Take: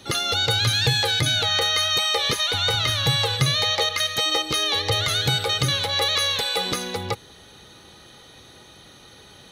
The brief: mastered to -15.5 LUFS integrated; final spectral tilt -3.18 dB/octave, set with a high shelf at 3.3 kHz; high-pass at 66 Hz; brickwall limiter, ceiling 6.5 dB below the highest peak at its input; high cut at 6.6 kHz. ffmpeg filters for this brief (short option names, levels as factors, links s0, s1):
-af "highpass=66,lowpass=6600,highshelf=f=3300:g=-4.5,volume=2.82,alimiter=limit=0.447:level=0:latency=1"